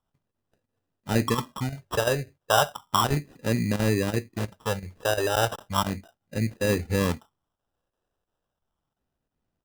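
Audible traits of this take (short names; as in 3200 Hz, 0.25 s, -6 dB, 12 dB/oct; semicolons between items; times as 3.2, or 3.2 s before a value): chopped level 2.9 Hz, depth 60%, duty 90%; phasing stages 4, 0.34 Hz, lowest notch 210–1200 Hz; aliases and images of a low sample rate 2200 Hz, jitter 0%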